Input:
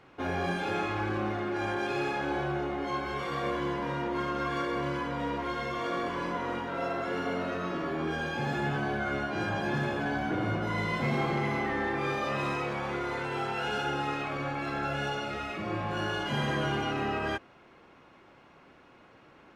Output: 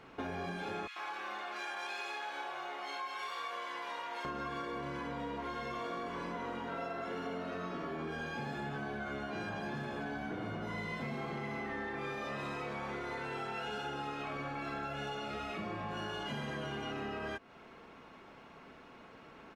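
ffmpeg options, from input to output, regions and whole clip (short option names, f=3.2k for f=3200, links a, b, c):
-filter_complex "[0:a]asettb=1/sr,asplit=3[a][b][c];[a]atrim=end=0.874[d];[b]atrim=start=0.87:end=4.25,asetpts=PTS-STARTPTS,afade=t=in:d=0.004:c=qsin,afade=t=out:st=3.376:d=0.004:c=qsin,highpass=1k,acrossover=split=1600[e][f];[e]adelay=90[g];[g][f]amix=inputs=2:normalize=0,atrim=end_sample=149058[h];[c]atrim=start=4.246[i];[d][h]acrossfade=d=0.004:c1=hsin:c2=qsin[j];[j][i]acrossfade=d=0.004:c1=qsin:c2=hsin,aecho=1:1:4.5:0.32,acompressor=threshold=-39dB:ratio=6,volume=1.5dB"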